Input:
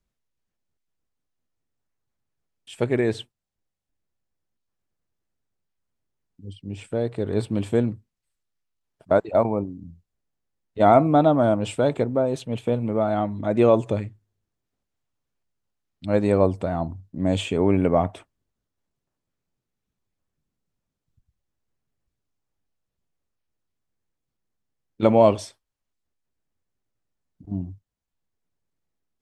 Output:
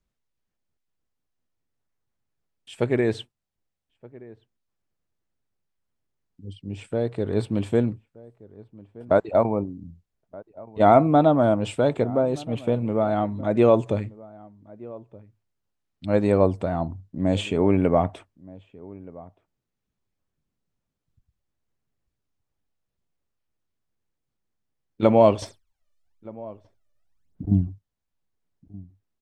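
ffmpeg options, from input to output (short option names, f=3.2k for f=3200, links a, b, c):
-filter_complex "[0:a]highshelf=f=7.7k:g=-6,asettb=1/sr,asplit=3[a][b][c];[a]atrim=end=25.424[d];[b]atrim=start=25.42:end=27.68,asetpts=PTS-STARTPTS,afade=t=in:d=0.004:c=qsin,afade=t=out:st=2.256:d=0.004:c=qsin,aphaser=in_gain=1:out_gain=1:delay=1.7:decay=0.79:speed=1:type=sinusoidal[e];[c]atrim=start=27.676[f];[d][e]acrossfade=d=0.004:c1=hsin:c2=qsin[g];[g][f]acrossfade=d=0.004:c1=qsin:c2=hsin,asplit=2[h][i];[i]adelay=1224,volume=-21dB,highshelf=f=4k:g=-27.6[j];[h][j]amix=inputs=2:normalize=0"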